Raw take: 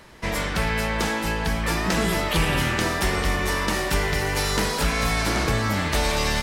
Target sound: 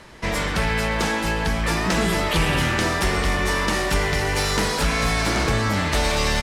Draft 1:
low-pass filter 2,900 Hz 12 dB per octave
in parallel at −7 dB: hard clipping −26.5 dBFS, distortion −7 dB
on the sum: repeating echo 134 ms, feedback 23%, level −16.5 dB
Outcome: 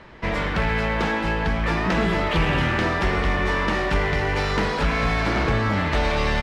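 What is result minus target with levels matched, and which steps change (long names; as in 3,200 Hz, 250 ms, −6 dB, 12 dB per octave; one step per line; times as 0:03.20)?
8,000 Hz band −14.0 dB
change: low-pass filter 11,000 Hz 12 dB per octave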